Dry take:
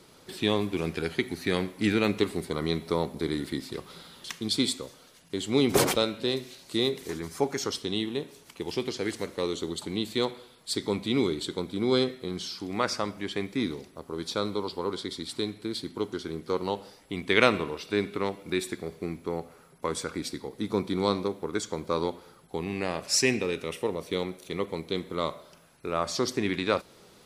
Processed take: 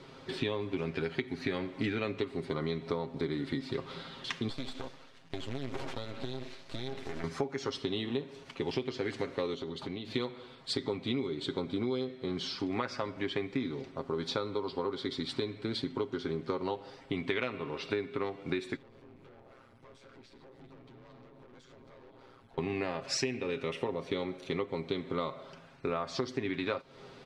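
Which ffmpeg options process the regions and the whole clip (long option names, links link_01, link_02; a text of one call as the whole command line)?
ffmpeg -i in.wav -filter_complex "[0:a]asettb=1/sr,asplit=3[link_01][link_02][link_03];[link_01]atrim=end=4.494[link_04];[link_02]atrim=start=4.49:end=7.24,asetpts=PTS-STARTPTS,afade=type=in:duration=0.004:curve=qsin,afade=type=out:start_time=2.746:duration=0.004:curve=qsin,aeval=exprs='max(val(0),0)':channel_layout=same,acrusher=bits=2:mode=log:mix=0:aa=0.000001,acompressor=threshold=-36dB:ratio=10:attack=3.2:release=140:knee=1:detection=peak[link_05];[link_03]atrim=start=7.236[link_06];[link_04][link_05]acrossfade=duration=0.004:curve1=hsin:curve2=qsin[link_07];[link_07][link_06]acrossfade=duration=0.004:curve1=qsin:curve2=hsin,asettb=1/sr,asplit=3[link_08][link_09][link_10];[link_08]atrim=end=9.544[link_11];[link_09]atrim=start=9.54:end=10.14,asetpts=PTS-STARTPTS,afade=type=in:duration=0.004:curve=qsin,afade=type=out:start_time=0.596:duration=0.004:curve=qsin,equalizer=frequency=7800:width=4.4:gain=-9.5,acompressor=threshold=-38dB:ratio=6:attack=3.2:release=140:knee=1:detection=peak[link_12];[link_10]atrim=start=10.136[link_13];[link_11][link_12]acrossfade=duration=0.004:curve1=hsin:curve2=qsin[link_14];[link_14][link_13]acrossfade=duration=0.004:curve1=qsin:curve2=hsin,asettb=1/sr,asplit=3[link_15][link_16][link_17];[link_15]atrim=end=18.764[link_18];[link_16]atrim=start=18.76:end=22.58,asetpts=PTS-STARTPTS,afade=type=in:duration=0.004:curve=qsin,afade=type=out:start_time=3.816:duration=0.004:curve=qsin,aeval=exprs='val(0)*sin(2*PI*62*n/s)':channel_layout=same,acompressor=threshold=-46dB:ratio=4:attack=3.2:release=140:knee=1:detection=peak,aeval=exprs='(tanh(631*val(0)+0.25)-tanh(0.25))/631':channel_layout=same[link_19];[link_17]atrim=start=22.576[link_20];[link_18][link_19]acrossfade=duration=0.004:curve1=hsin:curve2=qsin[link_21];[link_21][link_20]acrossfade=duration=0.004:curve1=qsin:curve2=hsin,lowpass=3500,aecho=1:1:7.5:0.55,acompressor=threshold=-33dB:ratio=12,volume=3.5dB" out.wav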